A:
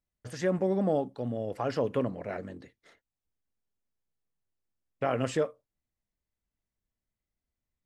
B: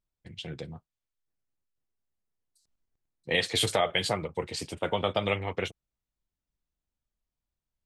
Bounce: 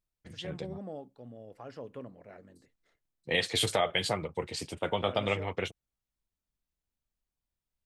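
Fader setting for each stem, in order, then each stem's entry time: -14.5 dB, -2.0 dB; 0.00 s, 0.00 s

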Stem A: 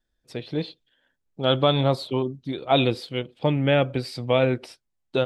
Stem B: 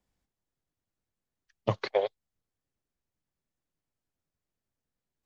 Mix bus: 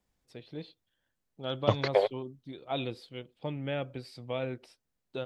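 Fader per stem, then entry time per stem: -14.0 dB, +2.0 dB; 0.00 s, 0.00 s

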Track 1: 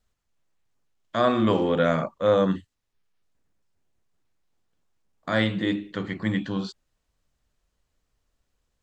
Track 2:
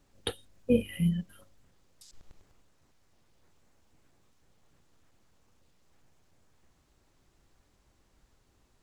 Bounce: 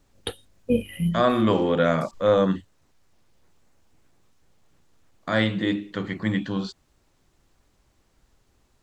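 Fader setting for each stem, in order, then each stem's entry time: +1.0 dB, +2.5 dB; 0.00 s, 0.00 s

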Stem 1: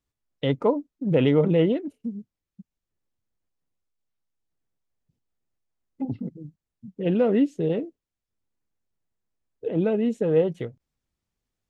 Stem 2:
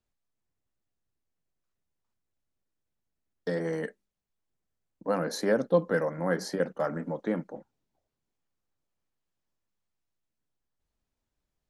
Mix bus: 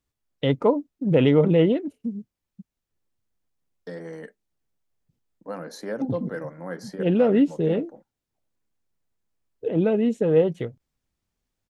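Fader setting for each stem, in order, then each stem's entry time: +2.0 dB, -6.0 dB; 0.00 s, 0.40 s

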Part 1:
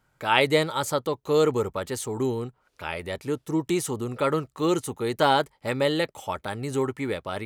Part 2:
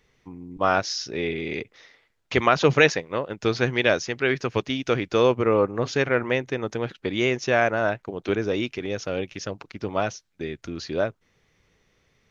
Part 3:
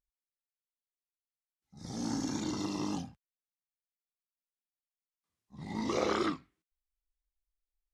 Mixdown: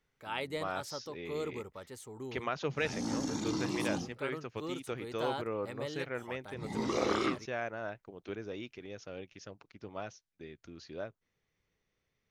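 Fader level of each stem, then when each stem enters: -17.0 dB, -16.5 dB, -0.5 dB; 0.00 s, 0.00 s, 1.00 s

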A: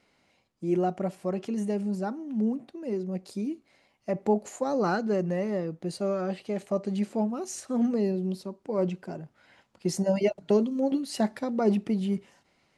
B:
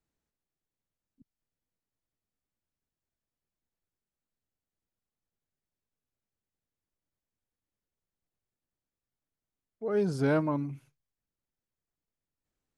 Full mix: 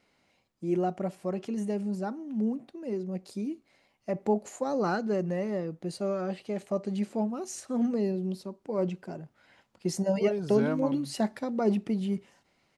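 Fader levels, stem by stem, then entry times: -2.0 dB, -4.5 dB; 0.00 s, 0.35 s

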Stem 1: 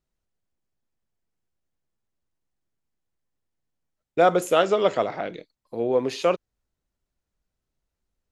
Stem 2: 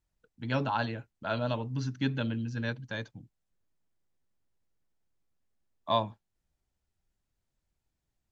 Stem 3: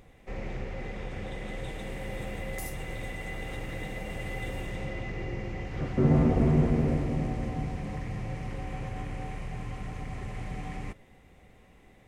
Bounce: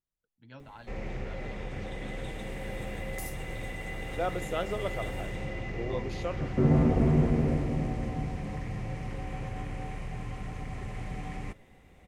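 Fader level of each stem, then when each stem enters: -13.5 dB, -19.0 dB, -0.5 dB; 0.00 s, 0.00 s, 0.60 s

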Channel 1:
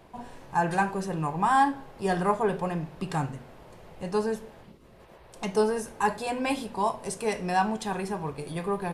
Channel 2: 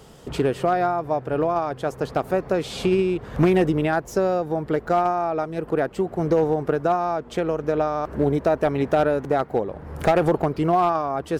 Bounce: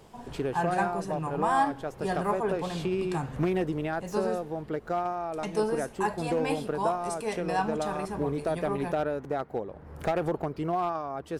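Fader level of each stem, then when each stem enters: -4.0 dB, -9.5 dB; 0.00 s, 0.00 s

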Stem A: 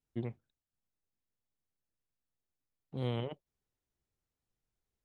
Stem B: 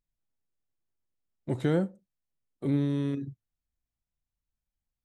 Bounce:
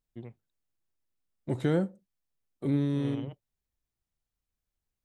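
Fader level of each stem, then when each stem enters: -6.0 dB, -0.5 dB; 0.00 s, 0.00 s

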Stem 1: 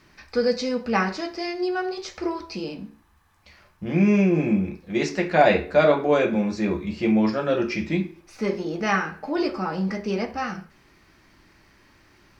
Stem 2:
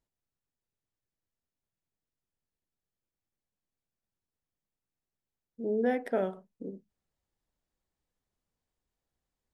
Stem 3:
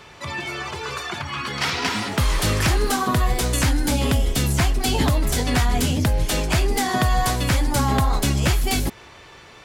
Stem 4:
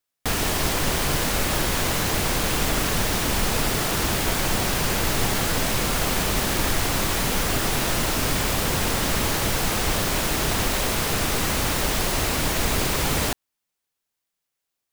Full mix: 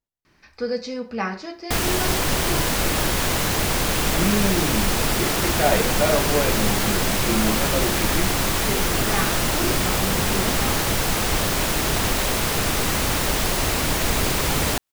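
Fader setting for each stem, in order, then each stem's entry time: -4.0 dB, -3.5 dB, mute, +1.5 dB; 0.25 s, 0.00 s, mute, 1.45 s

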